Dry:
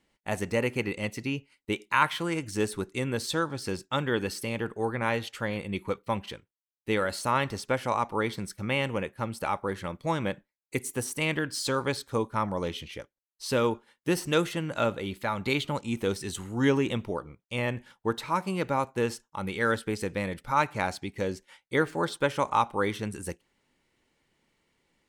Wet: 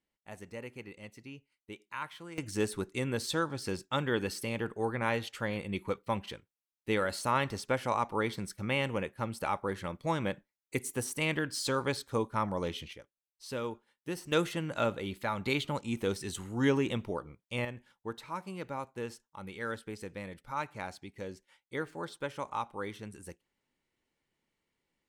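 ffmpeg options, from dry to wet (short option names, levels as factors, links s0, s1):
-af "asetnsamples=n=441:p=0,asendcmd='2.38 volume volume -3dB;12.93 volume volume -11dB;14.32 volume volume -3.5dB;17.65 volume volume -11dB',volume=0.158"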